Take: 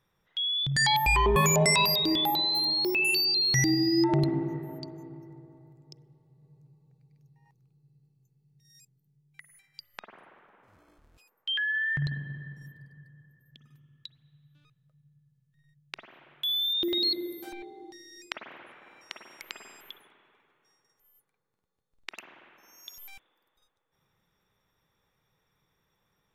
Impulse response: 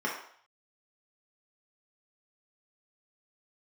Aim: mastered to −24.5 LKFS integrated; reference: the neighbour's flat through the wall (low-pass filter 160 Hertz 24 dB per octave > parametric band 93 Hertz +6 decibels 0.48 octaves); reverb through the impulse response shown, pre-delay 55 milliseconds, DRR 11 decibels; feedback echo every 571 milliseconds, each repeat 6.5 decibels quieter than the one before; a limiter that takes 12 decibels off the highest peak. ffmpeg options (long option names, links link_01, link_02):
-filter_complex "[0:a]alimiter=limit=-22.5dB:level=0:latency=1,aecho=1:1:571|1142|1713|2284|2855|3426:0.473|0.222|0.105|0.0491|0.0231|0.0109,asplit=2[link_01][link_02];[1:a]atrim=start_sample=2205,adelay=55[link_03];[link_02][link_03]afir=irnorm=-1:irlink=0,volume=-19.5dB[link_04];[link_01][link_04]amix=inputs=2:normalize=0,lowpass=frequency=160:width=0.5412,lowpass=frequency=160:width=1.3066,equalizer=frequency=93:width_type=o:width=0.48:gain=6,volume=16dB"